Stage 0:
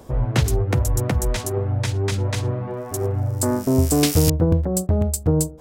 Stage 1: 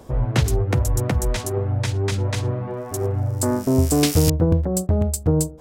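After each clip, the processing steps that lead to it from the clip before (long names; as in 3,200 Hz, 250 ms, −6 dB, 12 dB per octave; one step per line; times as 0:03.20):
high-shelf EQ 12,000 Hz −4 dB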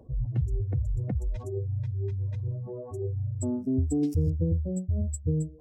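expanding power law on the bin magnitudes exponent 2.3
level −8 dB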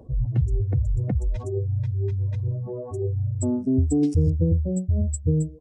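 downsampling to 22,050 Hz
level +5.5 dB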